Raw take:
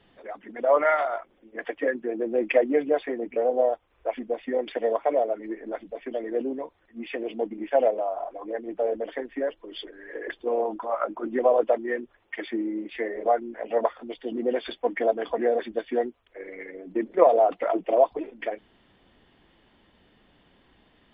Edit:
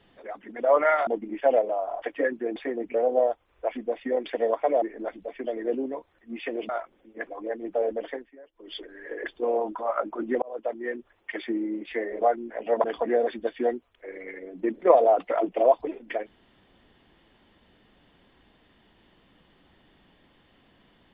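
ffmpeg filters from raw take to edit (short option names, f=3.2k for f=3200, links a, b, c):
-filter_complex "[0:a]asplit=11[a][b][c][d][e][f][g][h][i][j][k];[a]atrim=end=1.072[l];[b]atrim=start=7.358:end=8.312[m];[c]atrim=start=1.648:end=2.192[n];[d]atrim=start=2.978:end=5.242[o];[e]atrim=start=5.488:end=7.362[p];[f]atrim=start=1.068:end=1.652[q];[g]atrim=start=8.308:end=9.36,asetpts=PTS-STARTPTS,afade=t=out:st=0.812:d=0.24:silence=0.0891251[r];[h]atrim=start=9.36:end=9.56,asetpts=PTS-STARTPTS,volume=-21dB[s];[i]atrim=start=9.56:end=11.46,asetpts=PTS-STARTPTS,afade=t=in:d=0.24:silence=0.0891251,afade=t=out:st=1.896:d=0.004:c=hsin[t];[j]atrim=start=11.46:end=13.882,asetpts=PTS-STARTPTS,afade=t=in:d=0.93:c=qsin[u];[k]atrim=start=15.158[v];[l][m]acrossfade=d=0.004:c1=hsin:c2=hsin[w];[w][n]acrossfade=d=0.004:c1=hsin:c2=hsin[x];[x][o]acrossfade=d=0.004:c1=hsin:c2=hsin[y];[y][p]acrossfade=d=0.004:c1=hsin:c2=hsin[z];[z][q]acrossfade=d=0.004:c1=hsin:c2=hsin[aa];[r][s][t][u]concat=n=4:v=0:a=1[ab];[aa][ab]acrossfade=d=0.004:c1=hsin:c2=hsin[ac];[ac][v]acrossfade=d=0.004:c1=hsin:c2=hsin"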